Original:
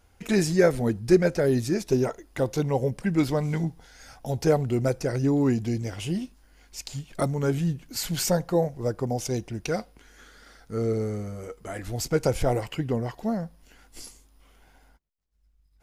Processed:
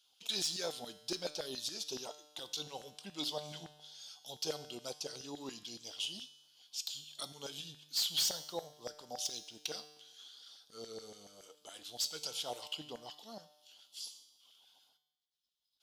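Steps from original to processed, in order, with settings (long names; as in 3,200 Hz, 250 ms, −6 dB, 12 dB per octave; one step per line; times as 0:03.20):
drawn EQ curve 190 Hz 0 dB, 2,000 Hz −30 dB, 3,300 Hz +5 dB, 7,900 Hz −9 dB
auto-filter high-pass saw down 7.1 Hz 770–1,700 Hz
hard clipping −29.5 dBFS, distortion −14 dB
tuned comb filter 150 Hz, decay 1 s, harmonics all, mix 70%
level +11.5 dB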